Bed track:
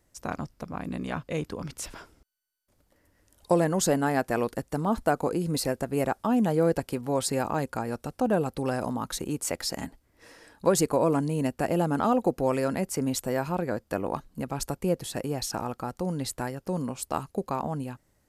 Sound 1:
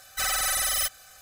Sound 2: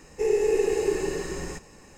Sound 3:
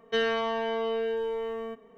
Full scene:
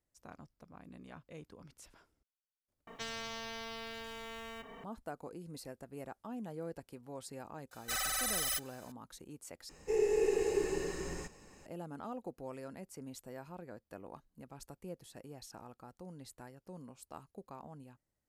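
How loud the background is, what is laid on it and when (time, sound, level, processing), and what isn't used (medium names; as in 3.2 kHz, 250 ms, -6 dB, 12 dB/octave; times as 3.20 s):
bed track -19.5 dB
2.87 s: replace with 3 -13.5 dB + spectrum-flattening compressor 4:1
7.71 s: add 1 -9 dB
9.69 s: replace with 2 -7.5 dB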